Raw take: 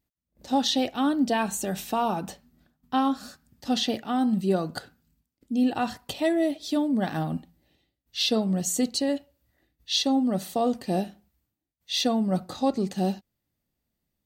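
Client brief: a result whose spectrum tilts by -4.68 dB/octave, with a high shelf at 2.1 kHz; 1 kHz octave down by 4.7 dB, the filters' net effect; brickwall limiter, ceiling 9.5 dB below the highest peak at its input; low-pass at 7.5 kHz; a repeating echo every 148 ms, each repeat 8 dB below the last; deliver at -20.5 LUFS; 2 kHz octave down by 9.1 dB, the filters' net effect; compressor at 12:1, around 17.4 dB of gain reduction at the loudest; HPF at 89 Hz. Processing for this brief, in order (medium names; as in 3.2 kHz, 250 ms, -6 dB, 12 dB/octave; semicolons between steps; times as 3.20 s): high-pass 89 Hz; low-pass 7.5 kHz; peaking EQ 1 kHz -4.5 dB; peaking EQ 2 kHz -8 dB; treble shelf 2.1 kHz -5 dB; compression 12:1, threshold -38 dBFS; peak limiter -36 dBFS; feedback delay 148 ms, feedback 40%, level -8 dB; trim +24 dB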